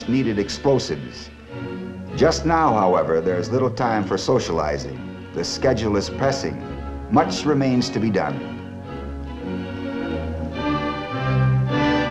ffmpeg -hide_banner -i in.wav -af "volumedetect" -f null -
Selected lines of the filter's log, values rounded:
mean_volume: -21.6 dB
max_volume: -2.5 dB